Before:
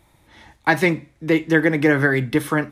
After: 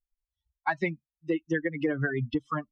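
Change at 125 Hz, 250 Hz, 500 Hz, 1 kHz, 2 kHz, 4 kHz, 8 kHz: -10.0 dB, -11.0 dB, -12.0 dB, -9.0 dB, -13.0 dB, -14.5 dB, under -20 dB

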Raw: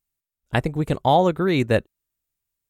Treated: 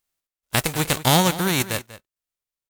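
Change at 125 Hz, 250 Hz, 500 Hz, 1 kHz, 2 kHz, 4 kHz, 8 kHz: 0.0 dB, -1.5 dB, -5.5 dB, -2.5 dB, +3.5 dB, +9.5 dB, n/a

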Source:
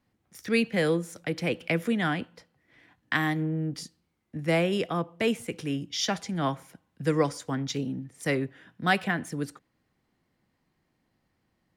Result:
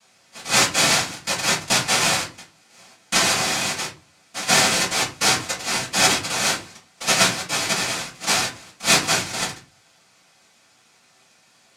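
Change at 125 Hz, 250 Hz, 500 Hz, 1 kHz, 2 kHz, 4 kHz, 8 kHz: -1.5, -3.0, 0.0, +9.5, +9.5, +16.5, +22.0 dB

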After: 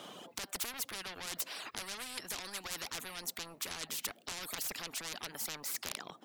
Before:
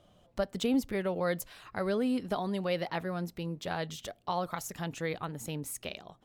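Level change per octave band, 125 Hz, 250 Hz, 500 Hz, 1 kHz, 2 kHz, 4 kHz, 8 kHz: -18.5, -20.0, -17.5, -9.5, -2.5, +3.0, +5.5 dB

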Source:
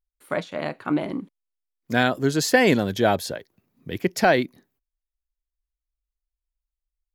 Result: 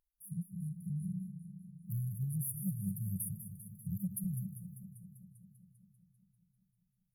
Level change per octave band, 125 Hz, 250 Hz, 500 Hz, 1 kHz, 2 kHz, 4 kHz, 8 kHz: -5.0 dB, -15.0 dB, under -40 dB, under -40 dB, under -40 dB, under -40 dB, -10.5 dB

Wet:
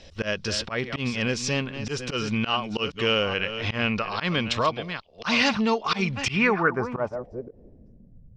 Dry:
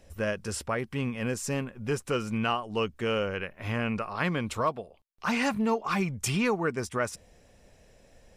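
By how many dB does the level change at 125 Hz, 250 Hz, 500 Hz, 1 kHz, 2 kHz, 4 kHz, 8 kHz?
+2.5, +3.0, +3.0, +3.5, +7.0, +11.0, +1.0 dB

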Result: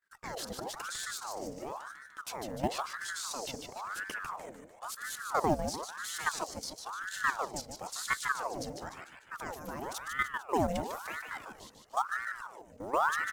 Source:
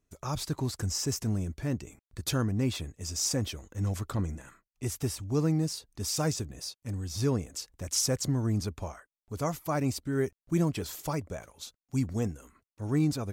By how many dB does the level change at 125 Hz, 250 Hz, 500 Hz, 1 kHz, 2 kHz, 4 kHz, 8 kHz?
-17.5, -10.5, -3.0, +7.5, +10.0, -5.0, -6.5 dB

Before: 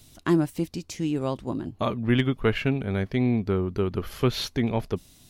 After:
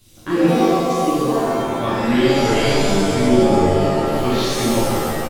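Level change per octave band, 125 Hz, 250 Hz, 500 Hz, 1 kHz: +4.0, +8.0, +11.5, +15.5 dB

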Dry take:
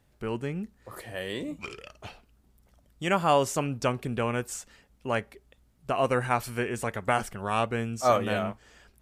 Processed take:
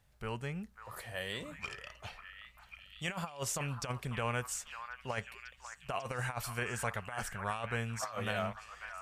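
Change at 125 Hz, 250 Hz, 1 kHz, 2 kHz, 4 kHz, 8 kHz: -6.0, -12.0, -11.5, -5.0, -5.0, -2.5 dB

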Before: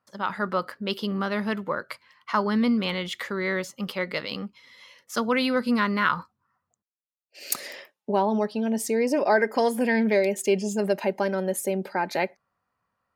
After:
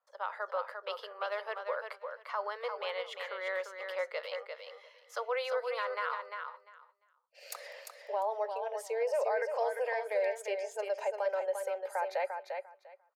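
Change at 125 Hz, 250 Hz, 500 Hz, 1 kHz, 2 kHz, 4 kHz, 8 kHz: under -40 dB, under -35 dB, -7.0 dB, -8.0 dB, -10.0 dB, -12.0 dB, -15.5 dB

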